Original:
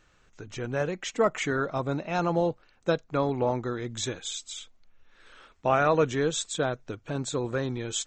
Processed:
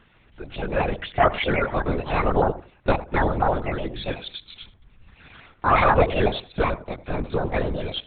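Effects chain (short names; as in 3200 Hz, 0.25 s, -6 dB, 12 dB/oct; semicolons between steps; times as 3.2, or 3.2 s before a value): trilling pitch shifter +7.5 st, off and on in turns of 62 ms; darkening echo 88 ms, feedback 23%, low-pass 1100 Hz, level -14 dB; LPC vocoder at 8 kHz whisper; gain +6 dB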